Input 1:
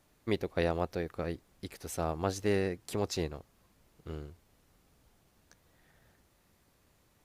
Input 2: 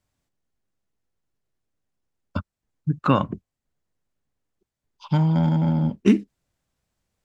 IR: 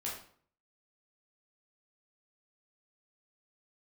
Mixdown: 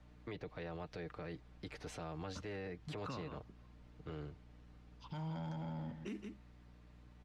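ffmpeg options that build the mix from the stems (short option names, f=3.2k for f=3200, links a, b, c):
-filter_complex "[0:a]lowpass=3.6k,aecho=1:1:6.6:0.48,volume=0.5dB[a];[1:a]aeval=exprs='val(0)+0.00501*(sin(2*PI*60*n/s)+sin(2*PI*2*60*n/s)/2+sin(2*PI*3*60*n/s)/3+sin(2*PI*4*60*n/s)/4+sin(2*PI*5*60*n/s)/5)':c=same,volume=-14dB,asplit=2[b][c];[c]volume=-14dB,aecho=0:1:166:1[d];[a][b][d]amix=inputs=3:normalize=0,acrossover=split=160|430|1800[e][f][g][h];[e]acompressor=threshold=-45dB:ratio=4[i];[f]acompressor=threshold=-48dB:ratio=4[j];[g]acompressor=threshold=-43dB:ratio=4[k];[h]acompressor=threshold=-49dB:ratio=4[l];[i][j][k][l]amix=inputs=4:normalize=0,alimiter=level_in=12dB:limit=-24dB:level=0:latency=1:release=13,volume=-12dB"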